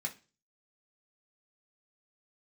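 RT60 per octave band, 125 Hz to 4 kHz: 0.45, 0.40, 0.35, 0.30, 0.30, 0.35 seconds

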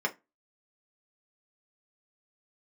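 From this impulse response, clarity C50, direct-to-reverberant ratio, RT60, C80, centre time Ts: 20.0 dB, 0.0 dB, non-exponential decay, 28.5 dB, 7 ms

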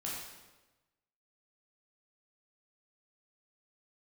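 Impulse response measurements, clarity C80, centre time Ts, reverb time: 3.0 dB, 71 ms, 1.1 s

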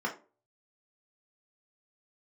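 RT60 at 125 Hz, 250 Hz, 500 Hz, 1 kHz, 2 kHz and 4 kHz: 0.35, 0.40, 0.40, 0.30, 0.25, 0.20 seconds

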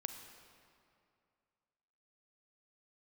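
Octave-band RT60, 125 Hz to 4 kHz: 2.5, 2.4, 2.4, 2.4, 2.1, 1.7 seconds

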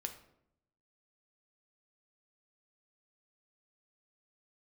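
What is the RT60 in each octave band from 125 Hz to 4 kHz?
1.1, 0.95, 0.80, 0.65, 0.55, 0.45 seconds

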